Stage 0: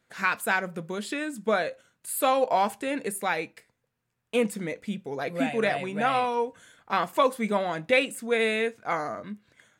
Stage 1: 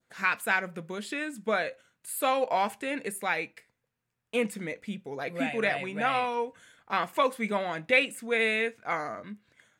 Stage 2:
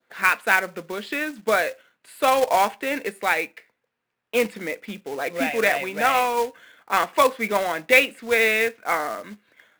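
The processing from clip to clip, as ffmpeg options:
-af "adynamicequalizer=threshold=0.0112:dfrequency=2200:dqfactor=1.2:tfrequency=2200:tqfactor=1.2:attack=5:release=100:ratio=0.375:range=3:mode=boostabove:tftype=bell,volume=-4dB"
-filter_complex "[0:a]acrossover=split=240 4500:gain=0.141 1 0.0891[a][b][c];[a][b][c]amix=inputs=3:normalize=0,acrusher=bits=3:mode=log:mix=0:aa=0.000001,volume=7.5dB"

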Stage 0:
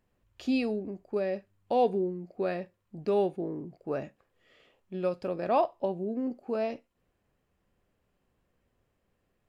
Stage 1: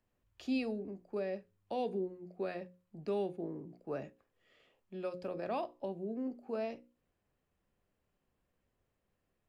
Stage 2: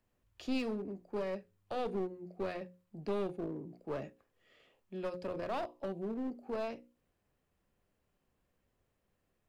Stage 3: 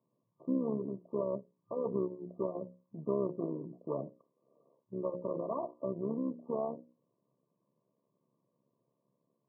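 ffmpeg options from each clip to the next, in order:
-filter_complex "[0:a]bandreject=f=60:t=h:w=6,bandreject=f=120:t=h:w=6,bandreject=f=180:t=h:w=6,bandreject=f=240:t=h:w=6,bandreject=f=300:t=h:w=6,bandreject=f=360:t=h:w=6,bandreject=f=420:t=h:w=6,bandreject=f=480:t=h:w=6,bandreject=f=540:t=h:w=6,acrossover=split=200|340|1600[a][b][c][d];[c]alimiter=level_in=2dB:limit=-24dB:level=0:latency=1:release=185,volume=-2dB[e];[a][b][e][d]amix=inputs=4:normalize=0,volume=-6dB"
-af "aeval=exprs='clip(val(0),-1,0.0112)':c=same,volume=2dB"
-af "asuperstop=centerf=780:order=8:qfactor=4.3,tremolo=f=69:d=0.71,afftfilt=real='re*between(b*sr/4096,110,1200)':imag='im*between(b*sr/4096,110,1200)':win_size=4096:overlap=0.75,volume=6dB"

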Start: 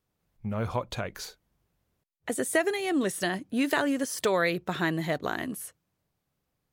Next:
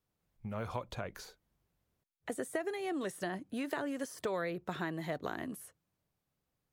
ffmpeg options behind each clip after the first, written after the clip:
-filter_complex "[0:a]acrossover=split=470|1600[a][b][c];[a]acompressor=threshold=-34dB:ratio=4[d];[b]acompressor=threshold=-32dB:ratio=4[e];[c]acompressor=threshold=-44dB:ratio=4[f];[d][e][f]amix=inputs=3:normalize=0,volume=-5dB"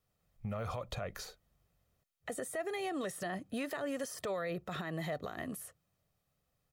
-af "aecho=1:1:1.6:0.43,alimiter=level_in=8.5dB:limit=-24dB:level=0:latency=1:release=43,volume=-8.5dB,volume=3dB"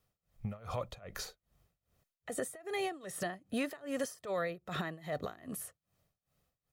-af "tremolo=f=2.5:d=0.92,volume=4dB"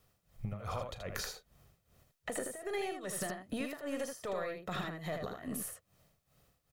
-filter_complex "[0:a]acompressor=threshold=-45dB:ratio=6,aeval=exprs='0.0355*(cos(1*acos(clip(val(0)/0.0355,-1,1)))-cos(1*PI/2))+0.001*(cos(8*acos(clip(val(0)/0.0355,-1,1)))-cos(8*PI/2))':c=same,asplit=2[a][b];[b]aecho=0:1:37|79:0.188|0.562[c];[a][c]amix=inputs=2:normalize=0,volume=8dB"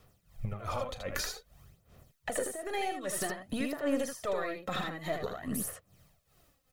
-af "aphaser=in_gain=1:out_gain=1:delay=3.9:decay=0.52:speed=0.52:type=sinusoidal,volume=3dB"

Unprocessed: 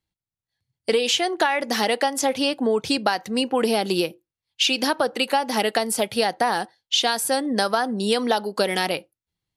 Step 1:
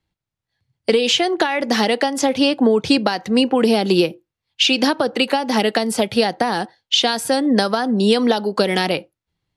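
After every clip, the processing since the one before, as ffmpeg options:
-filter_complex "[0:a]acrossover=split=360|3000[a][b][c];[b]acompressor=threshold=-27dB:ratio=6[d];[a][d][c]amix=inputs=3:normalize=0,aemphasis=mode=reproduction:type=50fm,volume=8.5dB"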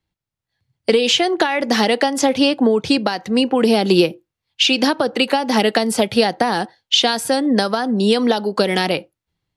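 -af "dynaudnorm=f=210:g=5:m=11.5dB,volume=-2dB"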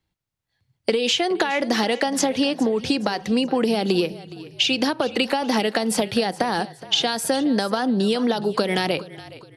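-filter_complex "[0:a]acompressor=threshold=-19dB:ratio=5,asplit=4[a][b][c][d];[b]adelay=417,afreqshift=-35,volume=-17.5dB[e];[c]adelay=834,afreqshift=-70,volume=-25dB[f];[d]adelay=1251,afreqshift=-105,volume=-32.6dB[g];[a][e][f][g]amix=inputs=4:normalize=0,volume=1dB"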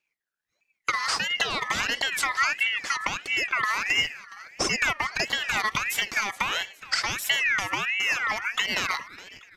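-af "aphaser=in_gain=1:out_gain=1:delay=3.7:decay=0.28:speed=0.41:type=triangular,aeval=exprs='val(0)*sin(2*PI*2000*n/s+2000*0.25/1.5*sin(2*PI*1.5*n/s))':c=same,volume=-2.5dB"

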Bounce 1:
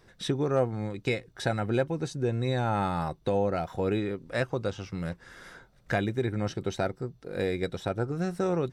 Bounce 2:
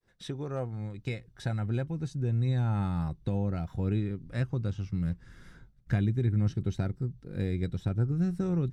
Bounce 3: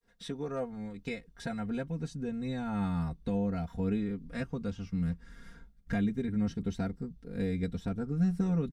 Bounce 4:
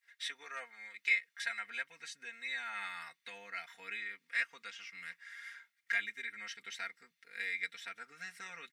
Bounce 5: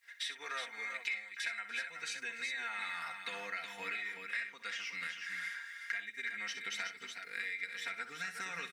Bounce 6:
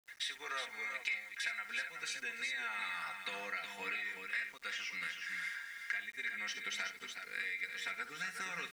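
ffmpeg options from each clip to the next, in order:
-af "agate=range=-33dB:threshold=-53dB:ratio=3:detection=peak,asubboost=boost=8.5:cutoff=200,volume=-9dB"
-af "aecho=1:1:4.3:0.95,volume=-2.5dB"
-af "highpass=f=2k:t=q:w=4.6,volume=3dB"
-filter_complex "[0:a]acompressor=threshold=-46dB:ratio=6,asplit=2[a][b];[b]aecho=0:1:63|292|362|373:0.282|0.106|0.237|0.447[c];[a][c]amix=inputs=2:normalize=0,volume=8.5dB"
-af "aeval=exprs='val(0)*gte(abs(val(0)),0.0015)':c=same"

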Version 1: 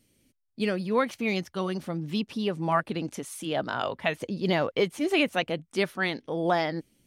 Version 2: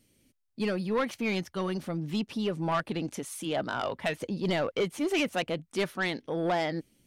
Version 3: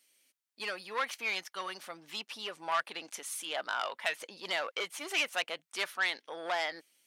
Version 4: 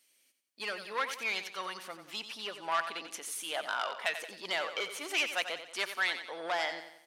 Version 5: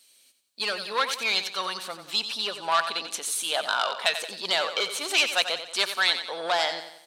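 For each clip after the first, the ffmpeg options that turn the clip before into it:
-af "asoftclip=type=tanh:threshold=-21.5dB"
-af "highpass=1k,volume=1.5dB"
-af "aecho=1:1:91|182|273|364|455:0.316|0.142|0.064|0.0288|0.013"
-af "equalizer=f=315:t=o:w=0.33:g=-5,equalizer=f=2k:t=o:w=0.33:g=-6,equalizer=f=4k:t=o:w=0.33:g=10,equalizer=f=8k:t=o:w=0.33:g=5,volume=8dB"

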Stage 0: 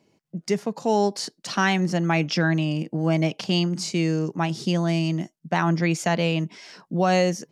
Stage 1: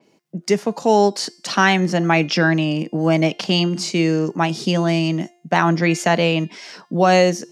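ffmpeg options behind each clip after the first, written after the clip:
-af "highpass=190,bandreject=f=350.9:t=h:w=4,bandreject=f=701.8:t=h:w=4,bandreject=f=1.0527k:t=h:w=4,bandreject=f=1.4036k:t=h:w=4,bandreject=f=1.7545k:t=h:w=4,bandreject=f=2.1054k:t=h:w=4,bandreject=f=2.4563k:t=h:w=4,bandreject=f=2.8072k:t=h:w=4,bandreject=f=3.1581k:t=h:w=4,bandreject=f=3.509k:t=h:w=4,bandreject=f=3.8599k:t=h:w=4,bandreject=f=4.2108k:t=h:w=4,bandreject=f=4.5617k:t=h:w=4,bandreject=f=4.9126k:t=h:w=4,bandreject=f=5.2635k:t=h:w=4,bandreject=f=5.6144k:t=h:w=4,bandreject=f=5.9653k:t=h:w=4,bandreject=f=6.3162k:t=h:w=4,bandreject=f=6.6671k:t=h:w=4,bandreject=f=7.018k:t=h:w=4,bandreject=f=7.3689k:t=h:w=4,bandreject=f=7.7198k:t=h:w=4,bandreject=f=8.0707k:t=h:w=4,bandreject=f=8.4216k:t=h:w=4,bandreject=f=8.7725k:t=h:w=4,bandreject=f=9.1234k:t=h:w=4,bandreject=f=9.4743k:t=h:w=4,bandreject=f=9.8252k:t=h:w=4,bandreject=f=10.1761k:t=h:w=4,bandreject=f=10.527k:t=h:w=4,bandreject=f=10.8779k:t=h:w=4,bandreject=f=11.2288k:t=h:w=4,bandreject=f=11.5797k:t=h:w=4,bandreject=f=11.9306k:t=h:w=4,bandreject=f=12.2815k:t=h:w=4,bandreject=f=12.6324k:t=h:w=4,bandreject=f=12.9833k:t=h:w=4,bandreject=f=13.3342k:t=h:w=4,bandreject=f=13.6851k:t=h:w=4,adynamicequalizer=threshold=0.00708:dfrequency=5100:dqfactor=0.7:tfrequency=5100:tqfactor=0.7:attack=5:release=100:ratio=0.375:range=2.5:mode=cutabove:tftype=highshelf,volume=7dB"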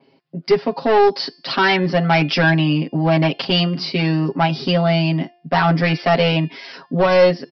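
-af "aresample=11025,asoftclip=type=hard:threshold=-12dB,aresample=44100,aecho=1:1:7.4:0.95"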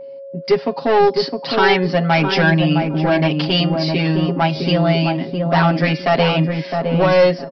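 -filter_complex "[0:a]asplit=2[a][b];[b]adelay=661,lowpass=f=850:p=1,volume=-3dB,asplit=2[c][d];[d]adelay=661,lowpass=f=850:p=1,volume=0.26,asplit=2[e][f];[f]adelay=661,lowpass=f=850:p=1,volume=0.26,asplit=2[g][h];[h]adelay=661,lowpass=f=850:p=1,volume=0.26[i];[c][e][g][i]amix=inputs=4:normalize=0[j];[a][j]amix=inputs=2:normalize=0,aeval=exprs='val(0)+0.0282*sin(2*PI*550*n/s)':c=same"

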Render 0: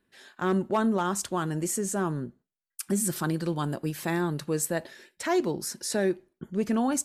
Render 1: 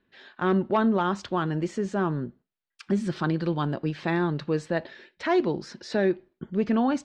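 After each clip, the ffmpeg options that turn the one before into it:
-af "lowpass=f=4.2k:w=0.5412,lowpass=f=4.2k:w=1.3066,volume=2.5dB"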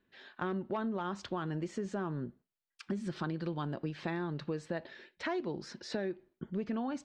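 -af "acompressor=threshold=-28dB:ratio=6,volume=-4.5dB"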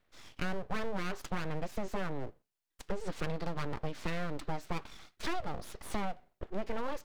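-af "aeval=exprs='abs(val(0))':c=same,volume=3dB"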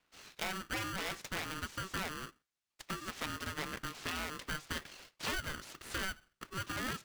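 -af "highpass=520,lowpass=7.9k,aeval=exprs='val(0)*sgn(sin(2*PI*760*n/s))':c=same,volume=2dB"

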